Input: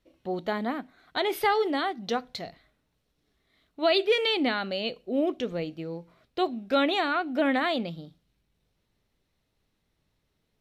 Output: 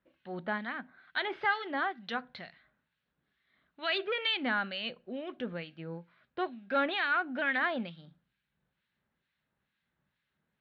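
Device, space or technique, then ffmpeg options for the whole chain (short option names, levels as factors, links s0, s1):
guitar amplifier with harmonic tremolo: -filter_complex "[0:a]acrossover=split=1500[s0][s1];[s0]aeval=exprs='val(0)*(1-0.7/2+0.7/2*cos(2*PI*2.2*n/s))':c=same[s2];[s1]aeval=exprs='val(0)*(1-0.7/2-0.7/2*cos(2*PI*2.2*n/s))':c=same[s3];[s2][s3]amix=inputs=2:normalize=0,asoftclip=type=tanh:threshold=0.119,highpass=100,equalizer=f=100:t=q:w=4:g=-10,equalizer=f=300:t=q:w=4:g=-8,equalizer=f=440:t=q:w=4:g=-9,equalizer=f=680:t=q:w=4:g=-5,equalizer=f=1600:t=q:w=4:g=9,lowpass=f=3600:w=0.5412,lowpass=f=3600:w=1.3066"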